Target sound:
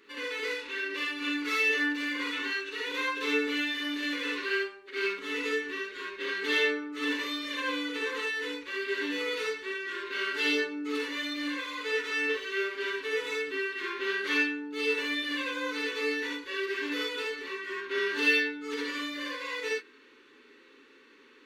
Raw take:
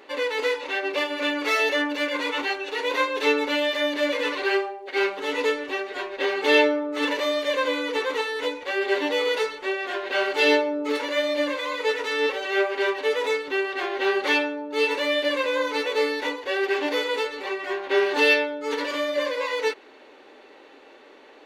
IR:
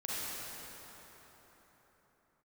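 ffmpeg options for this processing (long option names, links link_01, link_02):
-filter_complex "[0:a]asuperstop=centerf=690:order=4:qfactor=0.93[link_01];[1:a]atrim=start_sample=2205,atrim=end_sample=3969[link_02];[link_01][link_02]afir=irnorm=-1:irlink=0,volume=-3.5dB"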